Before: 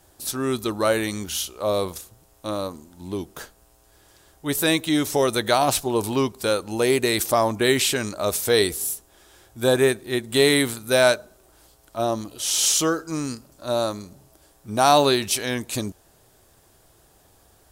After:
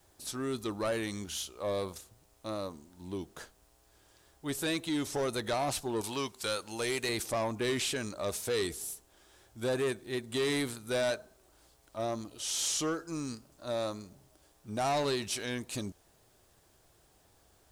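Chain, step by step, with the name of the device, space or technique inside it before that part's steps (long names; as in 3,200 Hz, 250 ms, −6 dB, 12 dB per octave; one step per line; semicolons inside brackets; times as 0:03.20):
0:06.01–0:07.09: tilt shelving filter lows −6.5 dB, about 870 Hz
compact cassette (soft clipping −17.5 dBFS, distortion −11 dB; low-pass filter 10,000 Hz 12 dB per octave; tape wow and flutter; white noise bed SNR 37 dB)
level −8.5 dB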